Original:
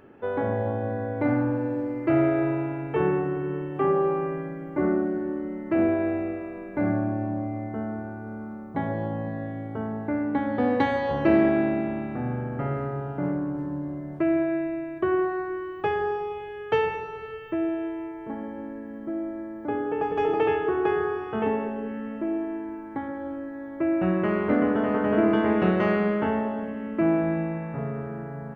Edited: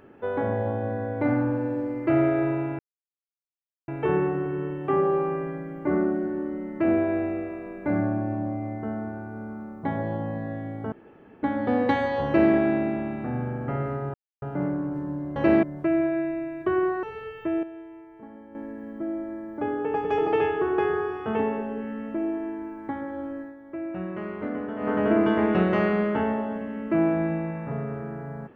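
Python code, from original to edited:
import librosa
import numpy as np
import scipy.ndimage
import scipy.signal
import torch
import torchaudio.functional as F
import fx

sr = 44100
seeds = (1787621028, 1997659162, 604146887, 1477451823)

y = fx.edit(x, sr, fx.insert_silence(at_s=2.79, length_s=1.09),
    fx.room_tone_fill(start_s=9.83, length_s=0.51),
    fx.duplicate(start_s=11.17, length_s=0.27, to_s=13.99),
    fx.insert_silence(at_s=13.05, length_s=0.28),
    fx.cut(start_s=15.39, length_s=1.71),
    fx.clip_gain(start_s=17.7, length_s=0.92, db=-10.5),
    fx.fade_down_up(start_s=23.48, length_s=1.51, db=-9.0, fade_s=0.14), tone=tone)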